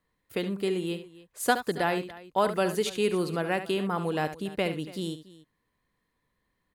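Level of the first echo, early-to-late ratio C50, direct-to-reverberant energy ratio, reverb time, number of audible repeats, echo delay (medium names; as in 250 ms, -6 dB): -11.0 dB, no reverb, no reverb, no reverb, 2, 71 ms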